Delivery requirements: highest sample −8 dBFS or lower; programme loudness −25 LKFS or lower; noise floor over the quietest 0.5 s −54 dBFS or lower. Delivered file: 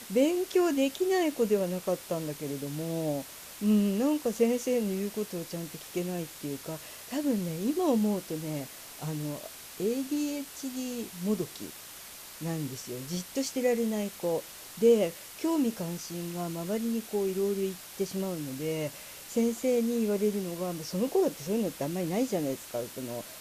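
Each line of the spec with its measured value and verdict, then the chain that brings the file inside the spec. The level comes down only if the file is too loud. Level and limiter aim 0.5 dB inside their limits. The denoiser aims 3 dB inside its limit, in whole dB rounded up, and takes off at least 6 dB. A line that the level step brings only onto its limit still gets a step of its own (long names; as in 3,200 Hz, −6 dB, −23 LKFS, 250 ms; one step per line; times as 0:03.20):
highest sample −12.5 dBFS: in spec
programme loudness −31.0 LKFS: in spec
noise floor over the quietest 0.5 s −46 dBFS: out of spec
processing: broadband denoise 11 dB, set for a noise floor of −46 dBFS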